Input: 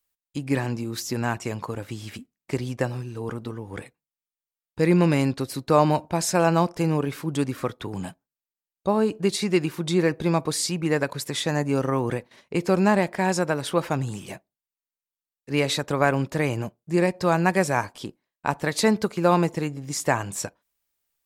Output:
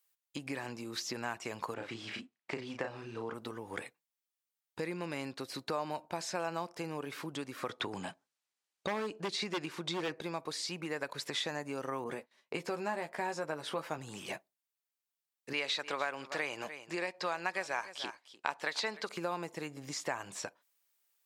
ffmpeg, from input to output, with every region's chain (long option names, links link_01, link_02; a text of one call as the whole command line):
ffmpeg -i in.wav -filter_complex "[0:a]asettb=1/sr,asplit=3[link_01][link_02][link_03];[link_01]atrim=end=1.744[link_04];[link_02]atrim=start=1.74:end=3.34,asetpts=PTS-STARTPTS,afade=type=in:duration=0.004:curve=qsin,afade=type=out:start_time=1.596:duration=0.004:curve=qsin,acrusher=bits=8:mode=log:mix=0:aa=0.000001,highpass=100,lowpass=3800,asplit=2[link_05][link_06];[link_06]adelay=35,volume=-5dB[link_07];[link_05][link_07]amix=inputs=2:normalize=0,atrim=end_sample=70560[link_08];[link_03]atrim=start=3.336[link_09];[link_04][link_08]acrossfade=duration=0.004:curve1=hsin:curve2=qsin[link_10];[link_10][link_09]acrossfade=duration=0.004:curve1=qsin:curve2=hsin,asettb=1/sr,asplit=3[link_11][link_12][link_13];[link_11]atrim=end=7.694[link_14];[link_12]atrim=start=7.69:end=10.21,asetpts=PTS-STARTPTS,afade=type=in:duration=0.004:curve=qsin,afade=type=out:start_time=2.516:duration=0.004:curve=qsin,lowpass=7900,acontrast=77,aeval=exprs='0.299*(abs(mod(val(0)/0.299+3,4)-2)-1)':channel_layout=same[link_15];[link_13]atrim=start=10.206[link_16];[link_14][link_15]acrossfade=duration=0.004:curve1=hsin:curve2=qsin[link_17];[link_17][link_16]acrossfade=duration=0.004:curve1=qsin:curve2=hsin,asettb=1/sr,asplit=3[link_18][link_19][link_20];[link_18]atrim=end=12.044[link_21];[link_19]atrim=start=12.04:end=13.98,asetpts=PTS-STARTPTS,afade=type=in:duration=0.004:curve=qsin,afade=type=out:start_time=1.936:duration=0.004:curve=qsin,agate=range=-18dB:threshold=-44dB:ratio=16:release=100:detection=peak,asplit=2[link_22][link_23];[link_23]adelay=13,volume=-6dB[link_24];[link_22][link_24]amix=inputs=2:normalize=0,atrim=end_sample=85554,adynamicequalizer=threshold=0.02:dfrequency=1500:dqfactor=0.7:tfrequency=1500:tqfactor=0.7:attack=5:release=100:ratio=0.375:range=2.5:mode=cutabove:tftype=highshelf[link_25];[link_20]atrim=start=13.976[link_26];[link_21][link_25]acrossfade=duration=0.004:curve1=hsin:curve2=qsin[link_27];[link_27][link_26]acrossfade=duration=0.004:curve1=qsin:curve2=hsin,asettb=1/sr,asplit=3[link_28][link_29][link_30];[link_28]atrim=end=15.534[link_31];[link_29]atrim=start=15.53:end=19.09,asetpts=PTS-STARTPTS,afade=type=in:duration=0.004:curve=qsin,afade=type=out:start_time=3.556:duration=0.004:curve=qsin,lowpass=3800,aemphasis=mode=production:type=riaa,aecho=1:1:298:0.112,atrim=end_sample=156996[link_32];[link_30]atrim=start=19.086[link_33];[link_31][link_32]acrossfade=duration=0.004:curve1=hsin:curve2=qsin[link_34];[link_34][link_33]acrossfade=duration=0.004:curve1=qsin:curve2=hsin,acompressor=threshold=-31dB:ratio=6,highpass=frequency=660:poles=1,acrossover=split=5600[link_35][link_36];[link_36]acompressor=threshold=-55dB:ratio=4:attack=1:release=60[link_37];[link_35][link_37]amix=inputs=2:normalize=0,volume=1.5dB" out.wav